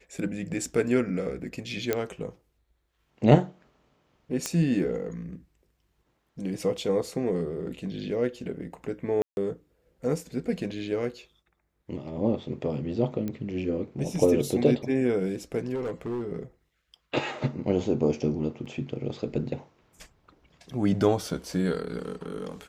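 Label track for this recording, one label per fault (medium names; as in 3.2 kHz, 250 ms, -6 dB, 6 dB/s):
1.930000	1.930000	pop -11 dBFS
4.460000	4.460000	pop -12 dBFS
9.220000	9.370000	dropout 151 ms
13.280000	13.280000	pop -20 dBFS
15.740000	16.230000	clipped -27.5 dBFS
18.650000	18.660000	dropout 6.4 ms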